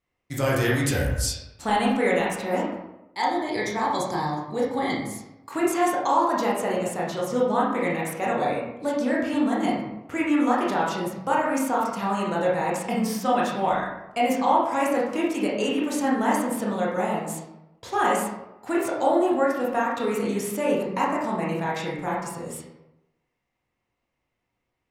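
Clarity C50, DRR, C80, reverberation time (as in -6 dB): 2.0 dB, -5.0 dB, 5.0 dB, 0.95 s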